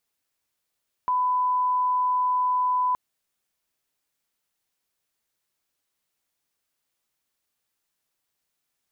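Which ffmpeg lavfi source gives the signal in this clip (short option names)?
-f lavfi -i "sine=f=1000:d=1.87:r=44100,volume=-1.94dB"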